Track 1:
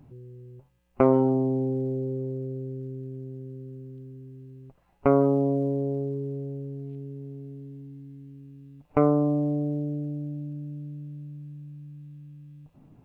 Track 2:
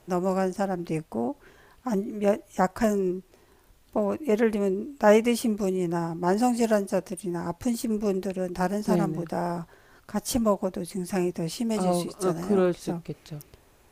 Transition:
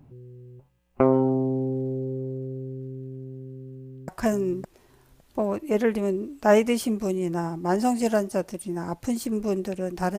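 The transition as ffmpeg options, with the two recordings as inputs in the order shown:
ffmpeg -i cue0.wav -i cue1.wav -filter_complex "[0:a]apad=whole_dur=10.18,atrim=end=10.18,atrim=end=4.082[link_01];[1:a]atrim=start=2.658:end=8.76[link_02];[link_01][link_02]acrossfade=duration=0.004:curve1=hsin:curve2=hsin,asplit=2[link_03][link_04];[link_04]afade=type=in:start_time=3.76:duration=0.01,afade=type=out:start_time=4.08:duration=0.01,aecho=0:1:560|1120:0.891251|0.0891251[link_05];[link_03][link_05]amix=inputs=2:normalize=0" out.wav

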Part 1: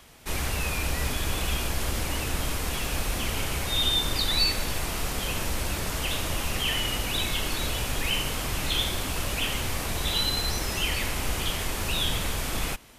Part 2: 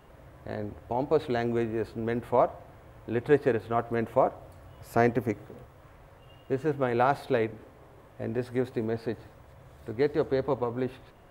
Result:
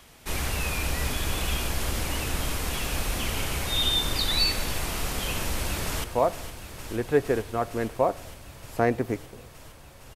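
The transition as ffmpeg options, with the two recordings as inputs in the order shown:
ffmpeg -i cue0.wav -i cue1.wav -filter_complex "[0:a]apad=whole_dur=10.15,atrim=end=10.15,atrim=end=6.042[link_01];[1:a]atrim=start=2.208:end=6.32[link_02];[link_01][link_02]acrossfade=duration=0.004:curve1=hsin:curve2=hsin,asplit=2[link_03][link_04];[link_04]afade=type=in:start_time=5.4:duration=0.01,afade=type=out:start_time=6.04:duration=0.01,aecho=0:1:460|920|1380|1840|2300|2760|3220|3680|4140|4600|5060|5520:0.298538|0.253758|0.215694|0.18334|0.155839|0.132463|0.112594|0.0957045|0.0813488|0.0691465|0.0587745|0.0499584[link_05];[link_03][link_05]amix=inputs=2:normalize=0" out.wav

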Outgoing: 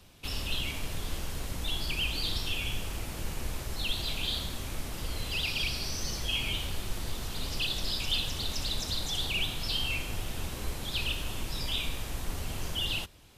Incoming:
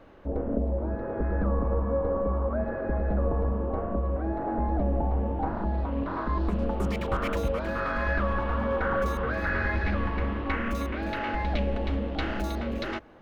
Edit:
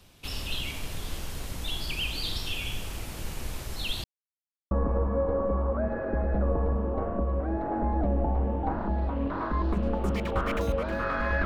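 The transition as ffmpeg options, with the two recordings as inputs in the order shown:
ffmpeg -i cue0.wav -i cue1.wav -filter_complex "[0:a]apad=whole_dur=11.45,atrim=end=11.45,asplit=2[link_01][link_02];[link_01]atrim=end=4.04,asetpts=PTS-STARTPTS,afade=type=out:start_time=4.036:duration=0.004:curve=hsin[link_03];[link_02]atrim=start=4.04:end=4.71,asetpts=PTS-STARTPTS,volume=0[link_04];[1:a]atrim=start=1.47:end=8.21,asetpts=PTS-STARTPTS,afade=type=in:duration=0.004:curve=hsin[link_05];[link_03][link_04][link_05]concat=n=3:v=0:a=1" out.wav

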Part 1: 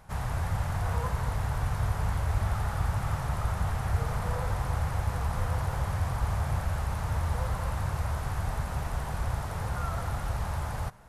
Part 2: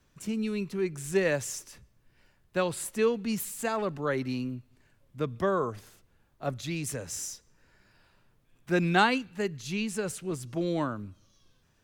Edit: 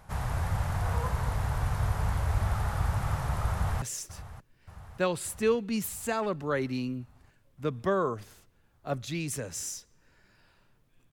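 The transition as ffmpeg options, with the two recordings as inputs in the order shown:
ffmpeg -i cue0.wav -i cue1.wav -filter_complex "[0:a]apad=whole_dur=11.12,atrim=end=11.12,atrim=end=3.822[link_01];[1:a]atrim=start=1.378:end=8.68[link_02];[link_01][link_02]acrossfade=duration=0.004:curve1=hsin:curve2=hsin,asplit=2[link_03][link_04];[link_04]afade=type=in:start_time=3.51:duration=0.01,afade=type=out:start_time=3.82:duration=0.01,aecho=0:1:580|1160|1740|2320|2900|3480|4060|4640|5220:0.177828|0.12448|0.0871357|0.060995|0.0426965|0.0298875|0.0209213|0.0146449|0.0102514[link_05];[link_03][link_05]amix=inputs=2:normalize=0" out.wav

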